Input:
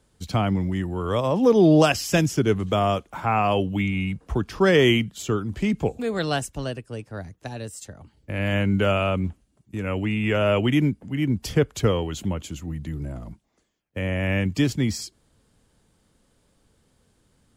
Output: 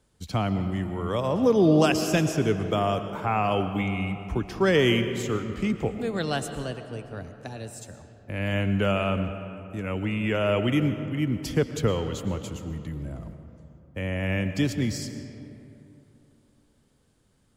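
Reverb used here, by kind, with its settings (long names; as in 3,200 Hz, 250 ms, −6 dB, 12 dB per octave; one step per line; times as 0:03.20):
comb and all-pass reverb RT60 3 s, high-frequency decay 0.5×, pre-delay 75 ms, DRR 9 dB
level −3.5 dB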